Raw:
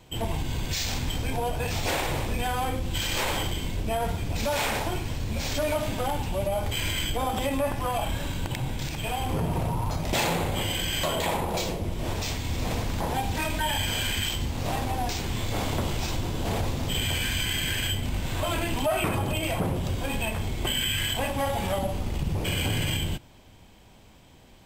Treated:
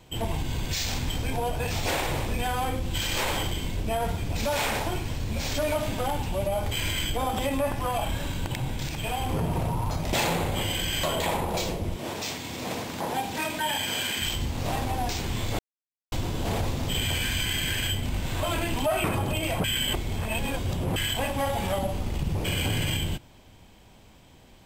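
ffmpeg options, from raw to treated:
-filter_complex "[0:a]asettb=1/sr,asplit=3[s0][s1][s2];[s0]atrim=end=11.964[s3];[s1]atrim=start=11.96:end=14.22,asetpts=PTS-STARTPTS,afade=t=in:d=0.004:c=qsin,afade=t=out:st=2.256:d=0.004:c=qsin,highpass=190[s4];[s2]atrim=start=14.216[s5];[s3][s4]acrossfade=d=0.004:c1=hsin:c2=qsin[s6];[s6][s5]acrossfade=d=0.004:c1=qsin:c2=hsin,asplit=5[s7][s8][s9][s10][s11];[s7]atrim=end=15.59,asetpts=PTS-STARTPTS,afade=t=out:st=15.586:d=0.004:c=hsin[s12];[s8]atrim=start=15.59:end=16.12,asetpts=PTS-STARTPTS,volume=0[s13];[s9]atrim=start=16.12:end=19.642,asetpts=PTS-STARTPTS,afade=t=in:d=0.004:c=hsin[s14];[s10]atrim=start=19.638:end=20.962,asetpts=PTS-STARTPTS,areverse[s15];[s11]atrim=start=20.958[s16];[s12][s13][s14]concat=n=3:v=0:a=1[s17];[s17][s15]acrossfade=d=0.004:c1=hsin:c2=hsin[s18];[s18][s16]acrossfade=d=0.004:c1=hsin:c2=hsin"

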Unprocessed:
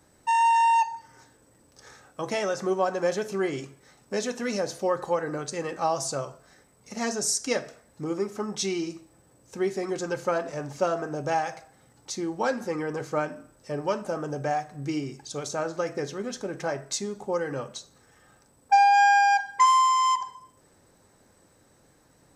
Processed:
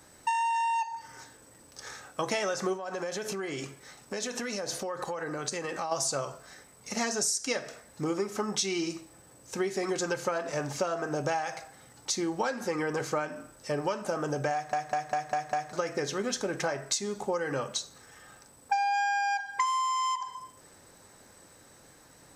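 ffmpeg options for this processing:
-filter_complex "[0:a]asplit=3[s0][s1][s2];[s0]afade=t=out:st=2.76:d=0.02[s3];[s1]acompressor=threshold=0.02:ratio=12:attack=3.2:release=140:knee=1:detection=peak,afade=t=in:st=2.76:d=0.02,afade=t=out:st=5.91:d=0.02[s4];[s2]afade=t=in:st=5.91:d=0.02[s5];[s3][s4][s5]amix=inputs=3:normalize=0,asplit=7[s6][s7][s8][s9][s10][s11][s12];[s6]atrim=end=14.732[s13];[s7]atrim=start=14.528:end=14.732[s14];[s8]atrim=start=14.528:end=14.732[s15];[s9]atrim=start=14.528:end=14.732[s16];[s10]atrim=start=14.528:end=14.732[s17];[s11]atrim=start=14.528:end=14.732[s18];[s12]atrim=start=15.728[s19];[s13][s14]acrossfade=d=0.004:c1=hsin:c2=hsin[s20];[s20][s15]acrossfade=d=0.004:c1=hsin:c2=hsin[s21];[s21][s16]acrossfade=d=0.004:c1=hsin:c2=hsin[s22];[s22][s17]acrossfade=d=0.004:c1=hsin:c2=hsin[s23];[s23][s18]acrossfade=d=0.004:c1=hsin:c2=hsin[s24];[s24][s19]acrossfade=d=0.004:c1=hsin:c2=hsin,tiltshelf=f=740:g=-3.5,acompressor=threshold=0.0282:ratio=8,volume=1.68"

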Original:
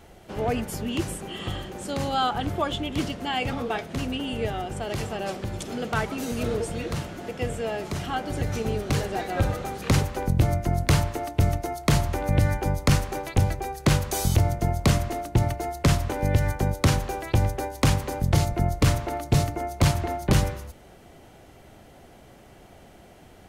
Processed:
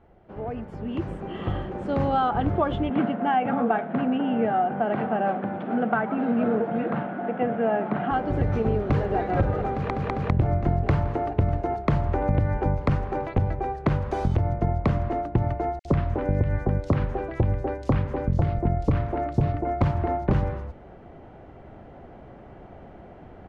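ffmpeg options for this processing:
-filter_complex "[0:a]asettb=1/sr,asplit=3[s0][s1][s2];[s0]atrim=end=2.904[s3];[s1]atrim=start=2.9:end=8.11,asetpts=PTS-STARTPTS,afade=t=in:d=0.004:c=qsin,afade=t=out:st=5.206:d=0.004:c=qsin,highpass=f=170:w=0.5412,highpass=f=170:w=1.3066,equalizer=f=220:t=q:w=4:g=8,equalizer=f=370:t=q:w=4:g=-4,equalizer=f=740:t=q:w=4:g=8,equalizer=f=1500:t=q:w=4:g=7,lowpass=f=3300:w=0.5412,lowpass=f=3300:w=1.3066[s4];[s2]atrim=start=8.106[s5];[s3][s4]acrossfade=d=0.004:c1=hsin:c2=qsin[s6];[s6][s5]acrossfade=d=0.004:c1=qsin:c2=hsin,asplit=2[s7][s8];[s8]afade=t=in:st=8.67:d=0.01,afade=t=out:st=9.18:d=0.01,aecho=0:1:430|860|1290|1720|2150|2580|3010|3440|3870|4300|4730|5160:0.354813|0.301591|0.256353|0.2179|0.185215|0.157433|0.133818|0.113745|0.0966833|0.0821808|0.0698537|0.0593756[s9];[s7][s9]amix=inputs=2:normalize=0,asettb=1/sr,asplit=3[s10][s11][s12];[s10]atrim=end=15.794[s13];[s11]atrim=start=15.79:end=19.81,asetpts=PTS-STARTPTS,afade=t=in:d=0.004:c=qsin,afade=t=out:st=4.016:d=0.004:c=qsin,acrossover=split=1000|4800[s14][s15][s16];[s14]adelay=60[s17];[s15]adelay=90[s18];[s17][s18][s16]amix=inputs=3:normalize=0,atrim=end_sample=177282[s19];[s12]atrim=start=19.806[s20];[s13][s19]acrossfade=d=0.004:c1=hsin:c2=qsin[s21];[s21][s20]acrossfade=d=0.004:c1=qsin:c2=hsin,asplit=4[s22][s23][s24][s25];[s22]atrim=end=9.902[s26];[s23]atrim=start=9.698:end=9.902[s27];[s24]atrim=start=9.698:end=9.902[s28];[s25]atrim=start=10.298[s29];[s26][s27]acrossfade=d=0.004:c1=hsin:c2=hsin[s30];[s30][s28]acrossfade=d=0.004:c1=hsin:c2=hsin[s31];[s31][s29]acrossfade=d=0.004:c1=hsin:c2=hsin,acompressor=threshold=0.0794:ratio=6,lowpass=1400,dynaudnorm=f=710:g=3:m=3.76,volume=0.501"

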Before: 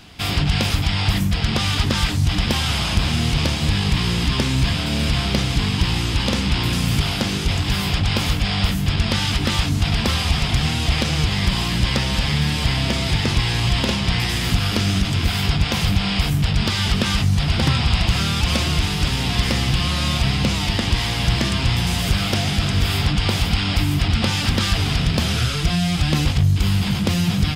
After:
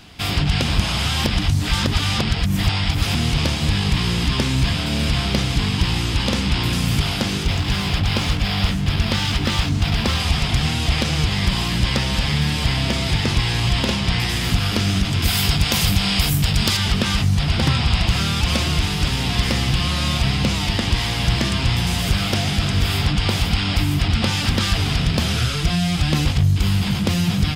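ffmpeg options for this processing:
-filter_complex "[0:a]asettb=1/sr,asplit=3[s0][s1][s2];[s0]atrim=end=7.434[s3];[s1]atrim=start=7.43:end=10.2,asetpts=PTS-STARTPTS,afade=t=in:d=0.004:c=qsin,afade=t=out:st=2.766:d=0.004:c=qsin,adynamicsmooth=sensitivity=6.5:basefreq=5100[s4];[s2]atrim=start=10.196[s5];[s3][s4]acrossfade=d=0.004:c1=hsin:c2=qsin[s6];[s6][s5]acrossfade=d=0.004:c1=qsin:c2=hsin,asettb=1/sr,asplit=3[s7][s8][s9];[s7]atrim=end=15.224[s10];[s8]atrim=start=15.22:end=16.77,asetpts=PTS-STARTPTS,afade=t=in:d=0.004:c=qsin,afade=t=out:st=1.546:d=0.004:c=qsin,aemphasis=mode=production:type=50kf[s11];[s9]atrim=start=16.766[s12];[s10][s11]acrossfade=d=0.004:c1=hsin:c2=qsin[s13];[s13][s12]acrossfade=d=0.004:c1=qsin:c2=hsin,asplit=3[s14][s15][s16];[s14]atrim=end=0.622[s17];[s15]atrim=start=0.618:end=3.152,asetpts=PTS-STARTPTS,areverse[s18];[s16]atrim=start=3.148[s19];[s17][s18]acrossfade=d=0.004:c1=hsin:c2=hsin[s20];[s20][s19]acrossfade=d=0.004:c1=hsin:c2=hsin"

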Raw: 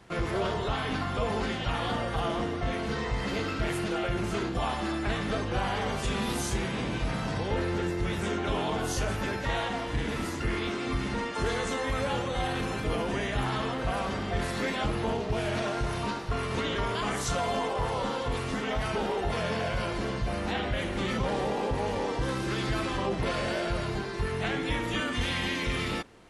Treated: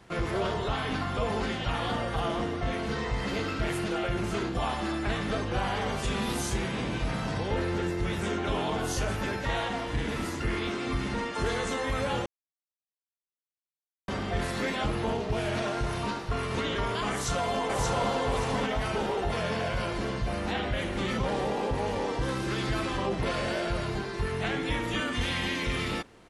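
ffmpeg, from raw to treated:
-filter_complex "[0:a]asplit=2[s0][s1];[s1]afade=t=in:st=17.11:d=0.01,afade=t=out:st=18.08:d=0.01,aecho=0:1:580|1160|1740|2320:0.794328|0.238298|0.0714895|0.0214469[s2];[s0][s2]amix=inputs=2:normalize=0,asplit=3[s3][s4][s5];[s3]atrim=end=12.26,asetpts=PTS-STARTPTS,afade=t=out:st=12.256:d=0.004:c=hsin[s6];[s4]atrim=start=12.26:end=14.08,asetpts=PTS-STARTPTS,volume=0[s7];[s5]atrim=start=14.08,asetpts=PTS-STARTPTS,afade=t=in:d=0.004:c=hsin[s8];[s6][s7][s8]concat=n=3:v=0:a=1"

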